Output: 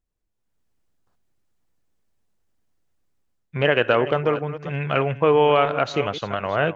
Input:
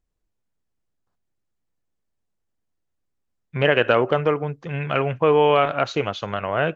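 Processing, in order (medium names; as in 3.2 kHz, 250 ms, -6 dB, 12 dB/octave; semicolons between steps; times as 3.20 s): chunks repeated in reverse 276 ms, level -13.5 dB; level rider gain up to 10.5 dB; trim -4 dB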